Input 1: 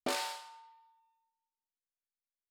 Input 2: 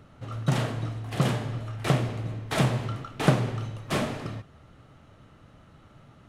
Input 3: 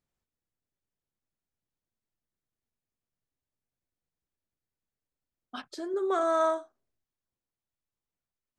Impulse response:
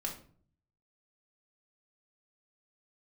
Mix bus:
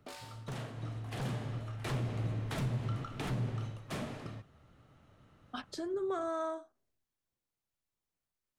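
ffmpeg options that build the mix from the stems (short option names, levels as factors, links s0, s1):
-filter_complex "[0:a]volume=0.211[s0];[1:a]aeval=exprs='0.1*(abs(mod(val(0)/0.1+3,4)-2)-1)':c=same,acontrast=89,volume=0.531,afade=t=in:st=0.73:d=0.23:silence=0.421697,afade=t=in:st=1.84:d=0.6:silence=0.398107,afade=t=out:st=3.35:d=0.45:silence=0.281838[s1];[2:a]volume=1.06[s2];[s0][s1][s2]amix=inputs=3:normalize=0,acrossover=split=260[s3][s4];[s4]acompressor=threshold=0.01:ratio=2.5[s5];[s3][s5]amix=inputs=2:normalize=0,alimiter=level_in=1.33:limit=0.0631:level=0:latency=1:release=386,volume=0.75"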